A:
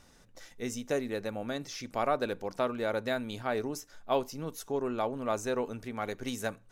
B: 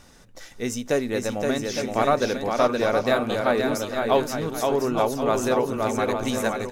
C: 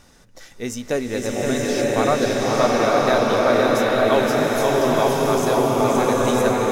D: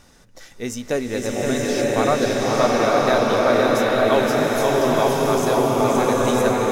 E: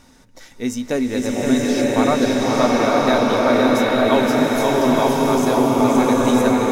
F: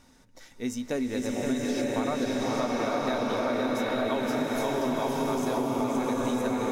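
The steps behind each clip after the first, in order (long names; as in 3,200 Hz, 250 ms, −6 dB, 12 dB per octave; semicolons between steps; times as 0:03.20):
bouncing-ball delay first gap 520 ms, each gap 0.65×, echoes 5; level +8 dB
slow-attack reverb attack 950 ms, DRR −4 dB
no processing that can be heard
hollow resonant body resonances 260/920/2,200/3,800 Hz, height 10 dB, ringing for 90 ms
downward compressor, threshold −16 dBFS, peak gain reduction 6 dB; level −8 dB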